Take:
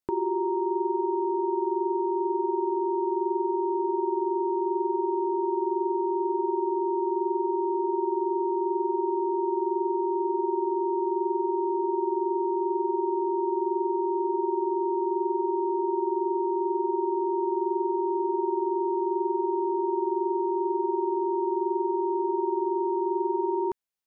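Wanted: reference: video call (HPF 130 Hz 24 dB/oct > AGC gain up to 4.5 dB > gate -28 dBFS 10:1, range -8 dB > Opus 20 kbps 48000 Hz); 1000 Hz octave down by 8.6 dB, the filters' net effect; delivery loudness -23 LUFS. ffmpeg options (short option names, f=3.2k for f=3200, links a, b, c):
-af "highpass=f=130:w=0.5412,highpass=f=130:w=1.3066,equalizer=f=1k:t=o:g=-9,dynaudnorm=m=4.5dB,agate=range=-8dB:threshold=-28dB:ratio=10,volume=4dB" -ar 48000 -c:a libopus -b:a 20k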